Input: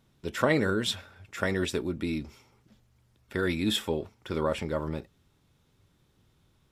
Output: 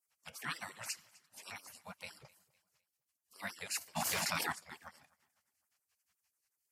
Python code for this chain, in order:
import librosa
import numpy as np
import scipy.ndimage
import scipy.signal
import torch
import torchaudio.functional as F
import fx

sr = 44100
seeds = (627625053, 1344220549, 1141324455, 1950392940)

y = fx.hum_notches(x, sr, base_hz=50, count=9)
y = fx.filter_lfo_highpass(y, sr, shape='sine', hz=5.7, low_hz=290.0, high_hz=4000.0, q=6.6)
y = fx.wow_flutter(y, sr, seeds[0], rate_hz=2.1, depth_cents=100.0)
y = fx.spec_gate(y, sr, threshold_db=-25, keep='weak')
y = fx.peak_eq(y, sr, hz=3700.0, db=-8.0, octaves=0.32)
y = fx.echo_feedback(y, sr, ms=254, feedback_pct=39, wet_db=-23)
y = fx.env_flatten(y, sr, amount_pct=100, at=(3.95, 4.51), fade=0.02)